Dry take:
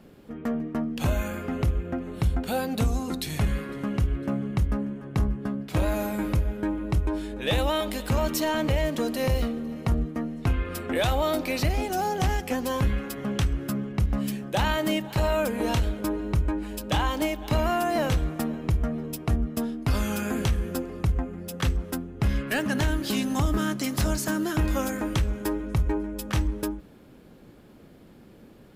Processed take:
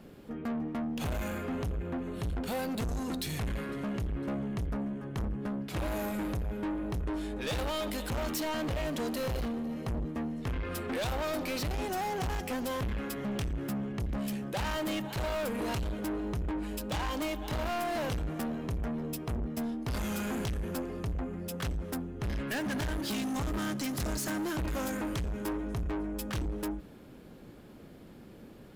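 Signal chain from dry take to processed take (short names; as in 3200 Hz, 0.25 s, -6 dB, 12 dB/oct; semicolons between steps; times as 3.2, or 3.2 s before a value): soft clip -30.5 dBFS, distortion -7 dB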